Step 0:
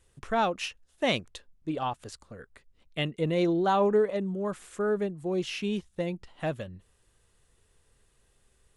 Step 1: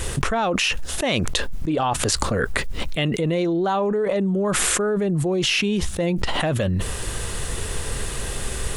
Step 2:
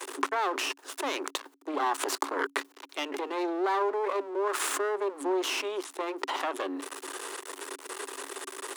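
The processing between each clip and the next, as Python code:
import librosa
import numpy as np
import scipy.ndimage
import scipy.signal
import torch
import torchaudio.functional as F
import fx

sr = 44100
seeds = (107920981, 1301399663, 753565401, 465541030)

y1 = fx.env_flatten(x, sr, amount_pct=100)
y1 = F.gain(torch.from_numpy(y1), -1.0).numpy()
y2 = np.maximum(y1, 0.0)
y2 = scipy.signal.sosfilt(scipy.signal.cheby1(6, 9, 270.0, 'highpass', fs=sr, output='sos'), y2)
y2 = F.gain(torch.from_numpy(y2), 2.0).numpy()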